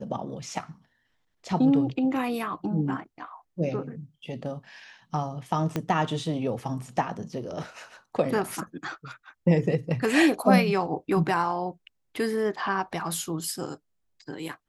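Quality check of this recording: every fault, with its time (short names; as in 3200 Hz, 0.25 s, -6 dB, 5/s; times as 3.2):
5.76 pop -14 dBFS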